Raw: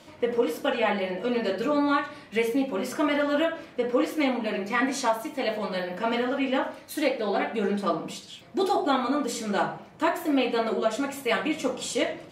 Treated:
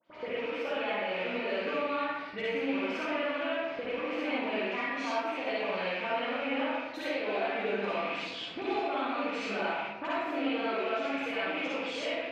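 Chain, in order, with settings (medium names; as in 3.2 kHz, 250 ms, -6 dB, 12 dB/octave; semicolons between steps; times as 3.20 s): rattle on loud lows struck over -43 dBFS, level -22 dBFS; in parallel at -3 dB: peak limiter -20.5 dBFS, peak gain reduction 10.5 dB; on the sum: gain riding 0.5 s; high-pass 800 Hz 6 dB/octave; compression 6:1, threshold -32 dBFS, peak gain reduction 12 dB; gate with hold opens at -33 dBFS; distance through air 230 m; phase dispersion highs, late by 59 ms, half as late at 2.5 kHz; reverberation RT60 1.0 s, pre-delay 47 ms, DRR -7 dB; trim -3.5 dB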